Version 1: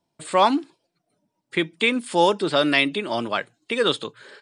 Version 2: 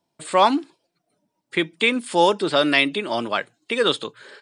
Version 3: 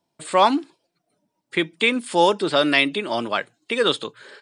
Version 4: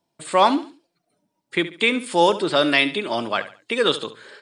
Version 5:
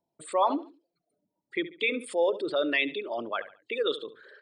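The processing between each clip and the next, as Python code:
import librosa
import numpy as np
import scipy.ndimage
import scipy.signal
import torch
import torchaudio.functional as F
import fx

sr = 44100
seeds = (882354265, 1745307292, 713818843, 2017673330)

y1 = fx.low_shelf(x, sr, hz=120.0, db=-7.0)
y1 = y1 * librosa.db_to_amplitude(1.5)
y2 = y1
y3 = fx.echo_feedback(y2, sr, ms=70, feedback_pct=33, wet_db=-14.0)
y4 = fx.envelope_sharpen(y3, sr, power=2.0)
y4 = y4 * librosa.db_to_amplitude(-8.5)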